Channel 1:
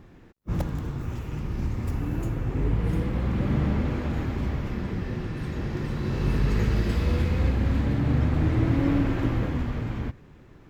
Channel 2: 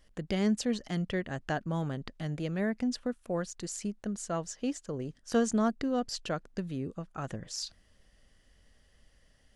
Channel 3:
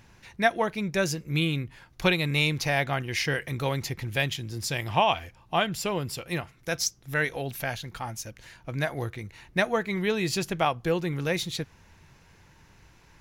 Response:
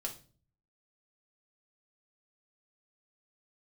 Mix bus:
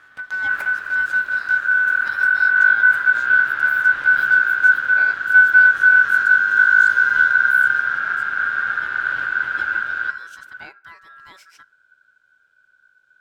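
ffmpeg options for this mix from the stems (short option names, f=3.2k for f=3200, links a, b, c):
-filter_complex "[0:a]lowshelf=f=190:g=-6.5,alimiter=limit=-20.5dB:level=0:latency=1:release=395,volume=-1dB,asplit=2[a][b];[b]volume=-4dB[c];[1:a]acompressor=threshold=-43dB:ratio=2,aeval=exprs='abs(val(0))':c=same,volume=1.5dB,asplit=2[d][e];[e]volume=-6dB[f];[2:a]volume=-16dB,asplit=2[g][h];[h]volume=-14.5dB[i];[3:a]atrim=start_sample=2205[j];[c][f][i]amix=inputs=3:normalize=0[k];[k][j]afir=irnorm=-1:irlink=0[l];[a][d][g][l]amix=inputs=4:normalize=0,asubboost=boost=11.5:cutoff=73,aeval=exprs='val(0)*sin(2*PI*1500*n/s)':c=same"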